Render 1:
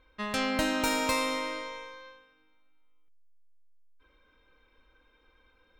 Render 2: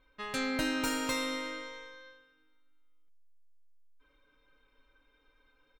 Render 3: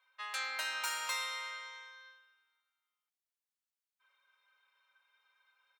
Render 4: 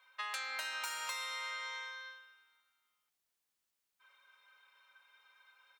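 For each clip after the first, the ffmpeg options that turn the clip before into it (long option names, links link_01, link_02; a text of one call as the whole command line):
ffmpeg -i in.wav -af "aecho=1:1:7.1:0.71,volume=-5.5dB" out.wav
ffmpeg -i in.wav -af "highpass=frequency=820:width=0.5412,highpass=frequency=820:width=1.3066,volume=-1.5dB" out.wav
ffmpeg -i in.wav -af "acompressor=threshold=-45dB:ratio=8,volume=7.5dB" out.wav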